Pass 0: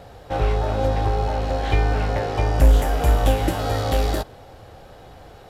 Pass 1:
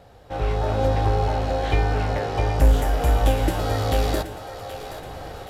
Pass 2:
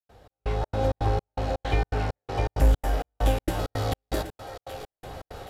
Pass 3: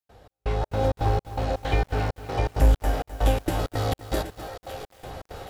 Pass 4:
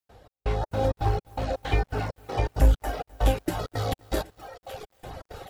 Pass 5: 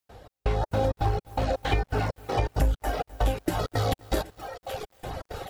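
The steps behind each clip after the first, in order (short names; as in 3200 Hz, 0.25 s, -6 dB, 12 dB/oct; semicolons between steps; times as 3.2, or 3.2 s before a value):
AGC gain up to 14.5 dB; split-band echo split 390 Hz, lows 0.104 s, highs 0.775 s, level -11 dB; gain -7 dB
step gate ".xx..xx.xx" 164 bpm -60 dB; gain -3.5 dB
lo-fi delay 0.256 s, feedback 35%, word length 7-bit, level -13.5 dB; gain +1.5 dB
reverb removal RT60 1.9 s
compressor 4:1, threshold -26 dBFS, peak gain reduction 11 dB; gain +4.5 dB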